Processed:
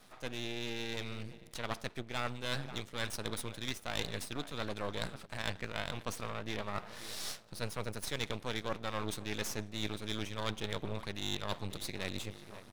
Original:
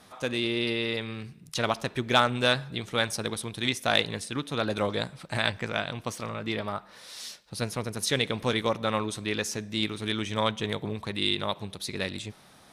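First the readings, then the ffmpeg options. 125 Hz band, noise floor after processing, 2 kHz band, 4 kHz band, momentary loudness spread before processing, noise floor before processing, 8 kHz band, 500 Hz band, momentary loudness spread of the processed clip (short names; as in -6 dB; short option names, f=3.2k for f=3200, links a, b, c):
-8.0 dB, -55 dBFS, -10.5 dB, -10.5 dB, 10 LU, -55 dBFS, -7.0 dB, -11.0 dB, 4 LU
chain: -filter_complex "[0:a]dynaudnorm=f=430:g=7:m=11.5dB,asplit=2[a][b];[b]adelay=537,lowpass=f=2.1k:p=1,volume=-21dB,asplit=2[c][d];[d]adelay=537,lowpass=f=2.1k:p=1,volume=0.53,asplit=2[e][f];[f]adelay=537,lowpass=f=2.1k:p=1,volume=0.53,asplit=2[g][h];[h]adelay=537,lowpass=f=2.1k:p=1,volume=0.53[i];[a][c][e][g][i]amix=inputs=5:normalize=0,aeval=exprs='max(val(0),0)':c=same,areverse,acompressor=threshold=-33dB:ratio=4,areverse,volume=-1.5dB"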